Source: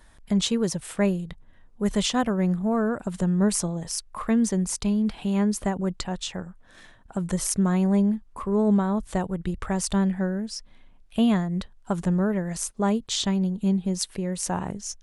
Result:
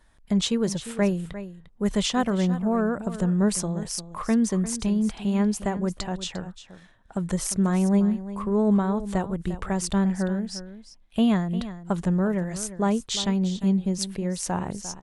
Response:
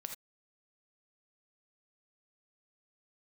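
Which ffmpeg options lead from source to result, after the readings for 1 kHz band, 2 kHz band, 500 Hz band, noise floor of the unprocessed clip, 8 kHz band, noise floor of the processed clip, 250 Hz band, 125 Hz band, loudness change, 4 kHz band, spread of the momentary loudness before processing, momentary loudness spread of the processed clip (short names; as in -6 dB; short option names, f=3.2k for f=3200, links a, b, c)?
0.0 dB, 0.0 dB, 0.0 dB, -53 dBFS, -1.5 dB, -55 dBFS, 0.0 dB, 0.0 dB, 0.0 dB, -0.5 dB, 9 LU, 9 LU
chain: -filter_complex "[0:a]agate=range=-6dB:threshold=-46dB:ratio=16:detection=peak,highshelf=f=10k:g=-5,asplit=2[a][b];[b]aecho=0:1:350:0.211[c];[a][c]amix=inputs=2:normalize=0"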